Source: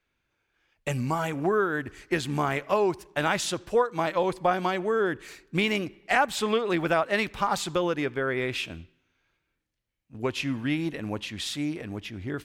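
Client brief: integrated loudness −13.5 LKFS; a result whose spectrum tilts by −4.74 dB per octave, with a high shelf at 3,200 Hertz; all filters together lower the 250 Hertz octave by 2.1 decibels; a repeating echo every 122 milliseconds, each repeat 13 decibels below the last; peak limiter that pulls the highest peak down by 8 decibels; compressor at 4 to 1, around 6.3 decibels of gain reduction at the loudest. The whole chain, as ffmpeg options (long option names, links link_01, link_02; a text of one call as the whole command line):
ffmpeg -i in.wav -af "equalizer=frequency=250:width_type=o:gain=-3,highshelf=frequency=3200:gain=-3,acompressor=threshold=-26dB:ratio=4,alimiter=limit=-22dB:level=0:latency=1,aecho=1:1:122|244|366:0.224|0.0493|0.0108,volume=19.5dB" out.wav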